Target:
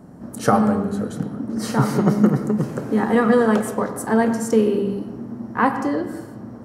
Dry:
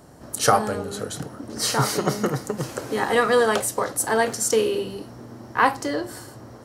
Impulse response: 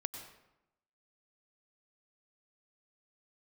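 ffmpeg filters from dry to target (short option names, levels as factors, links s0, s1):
-filter_complex "[0:a]equalizer=f=210:w=1.7:g=14.5,asplit=2[s0][s1];[1:a]atrim=start_sample=2205,lowpass=2200[s2];[s1][s2]afir=irnorm=-1:irlink=0,volume=1.78[s3];[s0][s3]amix=inputs=2:normalize=0,volume=0.376"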